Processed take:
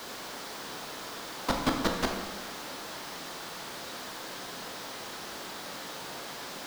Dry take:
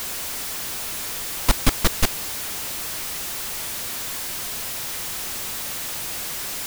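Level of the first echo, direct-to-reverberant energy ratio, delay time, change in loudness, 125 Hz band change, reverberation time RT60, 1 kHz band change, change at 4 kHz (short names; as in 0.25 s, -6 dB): none, 2.0 dB, none, -10.5 dB, -11.0 dB, 1.4 s, -2.0 dB, -8.5 dB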